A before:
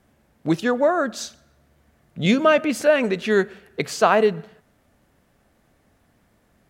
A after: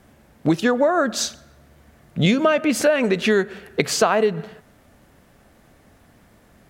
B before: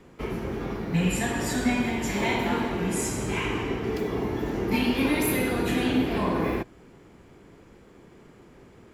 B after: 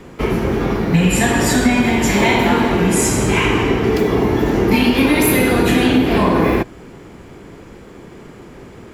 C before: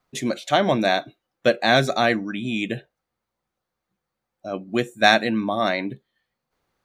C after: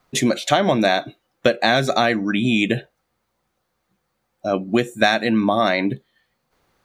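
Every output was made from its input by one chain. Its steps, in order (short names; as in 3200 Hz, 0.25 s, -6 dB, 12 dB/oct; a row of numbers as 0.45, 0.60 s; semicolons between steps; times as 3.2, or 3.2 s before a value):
compressor 6:1, threshold -23 dBFS; normalise peaks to -2 dBFS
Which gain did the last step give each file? +8.5, +13.5, +9.5 dB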